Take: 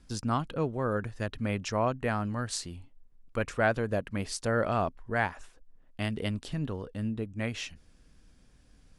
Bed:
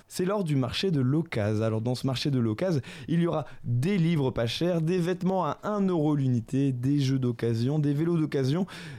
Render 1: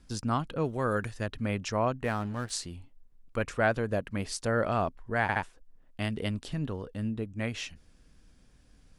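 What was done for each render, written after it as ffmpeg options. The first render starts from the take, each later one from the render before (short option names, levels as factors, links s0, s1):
-filter_complex "[0:a]asplit=3[s0][s1][s2];[s0]afade=t=out:st=0.64:d=0.02[s3];[s1]highshelf=f=2200:g=11.5,afade=t=in:st=0.64:d=0.02,afade=t=out:st=1.16:d=0.02[s4];[s2]afade=t=in:st=1.16:d=0.02[s5];[s3][s4][s5]amix=inputs=3:normalize=0,asplit=3[s6][s7][s8];[s6]afade=t=out:st=2.03:d=0.02[s9];[s7]aeval=exprs='sgn(val(0))*max(abs(val(0))-0.00531,0)':c=same,afade=t=in:st=2.03:d=0.02,afade=t=out:st=2.49:d=0.02[s10];[s8]afade=t=in:st=2.49:d=0.02[s11];[s9][s10][s11]amix=inputs=3:normalize=0,asplit=4[s12][s13][s14][s15];[s12]atrim=end=5.292[s16];[s13]atrim=start=5.218:end=5.292[s17];[s14]atrim=start=5.218:end=5.292[s18];[s15]atrim=start=5.428[s19];[s16][s17]acrossfade=d=0.004:c1=hsin:c2=hsin[s20];[s20][s18]acrossfade=d=0.004:c1=hsin:c2=hsin[s21];[s21][s19]acrossfade=d=0.004:c1=hsin:c2=hsin"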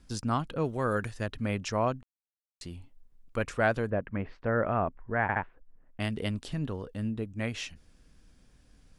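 -filter_complex "[0:a]asettb=1/sr,asplit=3[s0][s1][s2];[s0]atrim=end=3.904[s3];[s1]atrim=start=3.9:end=6,asetpts=PTS-STARTPTS,afade=t=in:d=0.004:c=qsin,afade=t=out:st=2.096:d=0.004:c=qsin,lowpass=f=2200:w=0.5412,lowpass=f=2200:w=1.3066[s4];[s2]atrim=start=5.996[s5];[s3][s4]acrossfade=d=0.004:c1=hsin:c2=qsin[s6];[s6][s5]acrossfade=d=0.004:c1=qsin:c2=hsin,asplit=3[s7][s8][s9];[s7]atrim=end=2.03,asetpts=PTS-STARTPTS,afade=t=out:st=2.026:d=0.004:c=hsin[s10];[s8]atrim=start=2.03:end=2.61,asetpts=PTS-STARTPTS,volume=0[s11];[s9]atrim=start=2.61,asetpts=PTS-STARTPTS,afade=t=in:d=0.004:c=hsin[s12];[s10][s11][s12]concat=n=3:v=0:a=1"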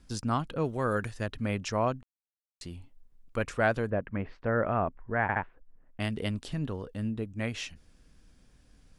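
-af anull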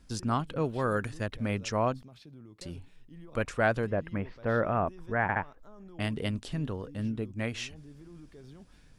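-filter_complex "[1:a]volume=0.0596[s0];[0:a][s0]amix=inputs=2:normalize=0"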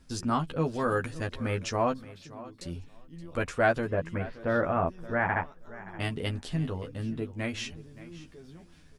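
-filter_complex "[0:a]asplit=2[s0][s1];[s1]adelay=12,volume=0.631[s2];[s0][s2]amix=inputs=2:normalize=0,aecho=1:1:573|1146:0.133|0.0213"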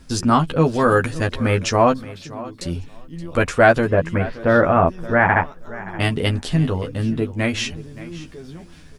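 -af "volume=3.98,alimiter=limit=0.794:level=0:latency=1"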